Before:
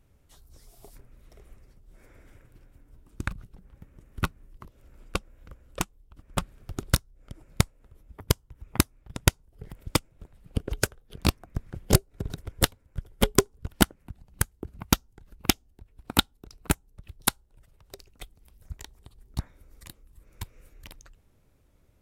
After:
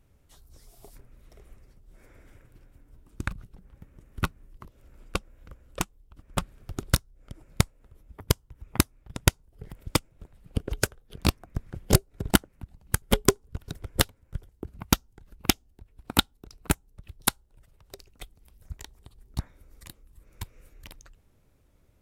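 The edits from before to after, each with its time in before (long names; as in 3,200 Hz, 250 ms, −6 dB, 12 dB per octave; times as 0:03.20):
0:12.31–0:13.12: swap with 0:13.78–0:14.49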